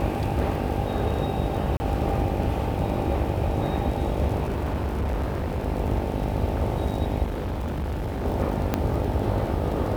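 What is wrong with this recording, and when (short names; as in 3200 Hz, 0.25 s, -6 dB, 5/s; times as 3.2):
buzz 50 Hz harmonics 18 -30 dBFS
crackle 33/s -31 dBFS
1.77–1.8 gap 30 ms
4.44–5.66 clipped -22.5 dBFS
7.23–8.26 clipped -25 dBFS
8.74 pop -9 dBFS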